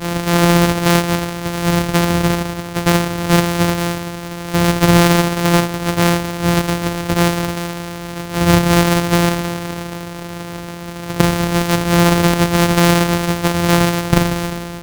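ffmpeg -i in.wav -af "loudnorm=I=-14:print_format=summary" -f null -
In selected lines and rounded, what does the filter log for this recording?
Input Integrated:    -15.5 LUFS
Input True Peak:      +0.6 dBTP
Input LRA:             3.2 LU
Input Threshold:     -25.9 LUFS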